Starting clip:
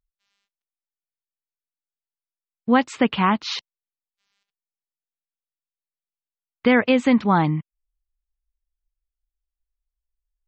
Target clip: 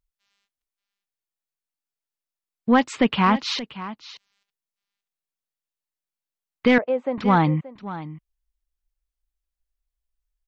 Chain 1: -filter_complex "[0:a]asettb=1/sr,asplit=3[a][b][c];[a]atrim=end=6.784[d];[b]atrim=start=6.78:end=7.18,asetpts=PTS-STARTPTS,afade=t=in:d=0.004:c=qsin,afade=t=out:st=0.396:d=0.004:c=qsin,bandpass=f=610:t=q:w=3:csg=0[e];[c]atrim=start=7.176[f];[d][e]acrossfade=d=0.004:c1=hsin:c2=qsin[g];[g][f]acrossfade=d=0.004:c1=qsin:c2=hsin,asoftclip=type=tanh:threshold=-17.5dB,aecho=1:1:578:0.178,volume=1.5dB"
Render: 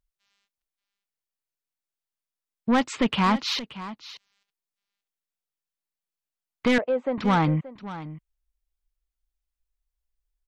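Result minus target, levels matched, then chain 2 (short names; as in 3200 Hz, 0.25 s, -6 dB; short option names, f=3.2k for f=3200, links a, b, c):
soft clip: distortion +10 dB
-filter_complex "[0:a]asettb=1/sr,asplit=3[a][b][c];[a]atrim=end=6.784[d];[b]atrim=start=6.78:end=7.18,asetpts=PTS-STARTPTS,afade=t=in:d=0.004:c=qsin,afade=t=out:st=0.396:d=0.004:c=qsin,bandpass=f=610:t=q:w=3:csg=0[e];[c]atrim=start=7.176[f];[d][e]acrossfade=d=0.004:c1=hsin:c2=qsin[g];[g][f]acrossfade=d=0.004:c1=qsin:c2=hsin,asoftclip=type=tanh:threshold=-8.5dB,aecho=1:1:578:0.178,volume=1.5dB"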